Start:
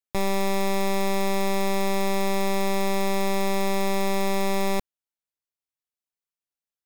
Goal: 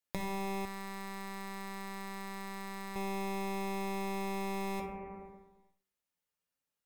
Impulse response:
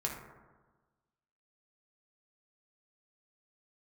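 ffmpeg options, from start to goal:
-filter_complex "[0:a]bandreject=frequency=191.7:width_type=h:width=4,bandreject=frequency=383.4:width_type=h:width=4[link_01];[1:a]atrim=start_sample=2205,asetrate=57330,aresample=44100[link_02];[link_01][link_02]afir=irnorm=-1:irlink=0,acompressor=threshold=-44dB:ratio=3,asettb=1/sr,asplit=3[link_03][link_04][link_05];[link_03]atrim=end=0.654[link_06];[link_04]atrim=start=0.65:end=2.96,asetpts=PTS-STARTPTS,afade=type=in:duration=0.004:curve=qsin,afade=type=out:start_time=2.306:duration=0.004:curve=qsin,aeval=exprs='max(val(0),0)':channel_layout=same[link_07];[link_05]atrim=start=2.956[link_08];[link_06][link_07]acrossfade=duration=0.004:curve1=hsin:curve2=qsin[link_09];[link_09][link_08]acrossfade=duration=0.004:curve1=qsin:curve2=hsin,volume=3.5dB"

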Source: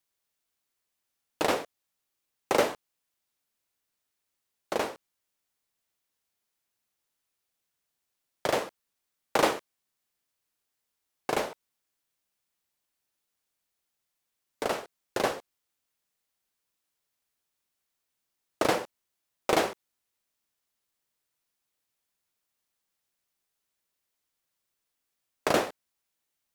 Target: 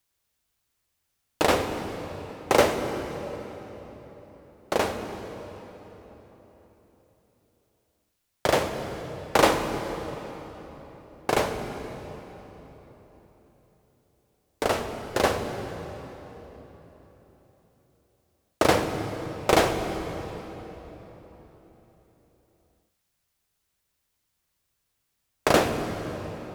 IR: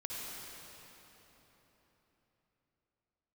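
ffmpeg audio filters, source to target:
-filter_complex "[0:a]asplit=2[link_01][link_02];[link_02]equalizer=frequency=77:width_type=o:width=2.7:gain=12[link_03];[1:a]atrim=start_sample=2205,lowshelf=frequency=130:gain=9.5[link_04];[link_03][link_04]afir=irnorm=-1:irlink=0,volume=-6dB[link_05];[link_01][link_05]amix=inputs=2:normalize=0,volume=2.5dB"

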